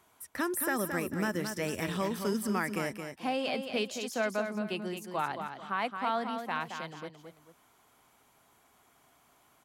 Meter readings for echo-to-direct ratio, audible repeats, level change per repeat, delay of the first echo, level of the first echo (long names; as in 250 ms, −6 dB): −6.5 dB, 2, −9.5 dB, 221 ms, −7.0 dB